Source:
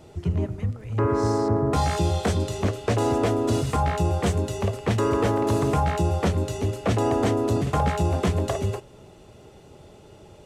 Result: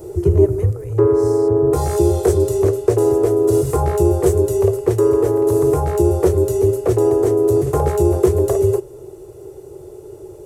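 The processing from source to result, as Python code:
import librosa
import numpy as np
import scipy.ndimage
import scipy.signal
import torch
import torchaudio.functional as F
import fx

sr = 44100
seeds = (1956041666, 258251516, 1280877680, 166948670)

y = fx.curve_eq(x, sr, hz=(140.0, 230.0, 370.0, 640.0, 1000.0, 3200.0, 13000.0), db=(0, -20, 14, -3, -4, -14, 12))
y = fx.rider(y, sr, range_db=10, speed_s=0.5)
y = F.gain(torch.from_numpy(y), 3.5).numpy()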